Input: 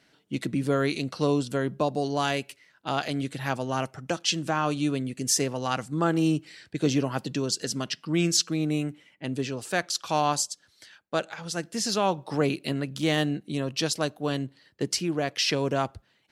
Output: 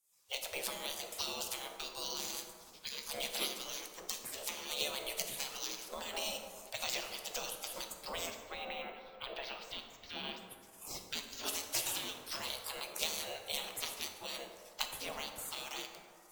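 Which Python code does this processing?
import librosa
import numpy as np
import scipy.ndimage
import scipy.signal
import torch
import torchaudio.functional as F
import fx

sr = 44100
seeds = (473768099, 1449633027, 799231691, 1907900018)

y = fx.octave_divider(x, sr, octaves=2, level_db=-5.0)
y = fx.recorder_agc(y, sr, target_db=-13.5, rise_db_per_s=50.0, max_gain_db=30)
y = fx.lowpass(y, sr, hz=3100.0, slope=24, at=(8.3, 10.48))
y = fx.spec_gate(y, sr, threshold_db=-25, keep='weak')
y = fx.peak_eq(y, sr, hz=1600.0, db=-9.5, octaves=0.88)
y = fx.rev_plate(y, sr, seeds[0], rt60_s=2.2, hf_ratio=0.4, predelay_ms=0, drr_db=4.0)
y = np.repeat(y[::2], 2)[:len(y)]
y = y * 10.0 ** (2.5 / 20.0)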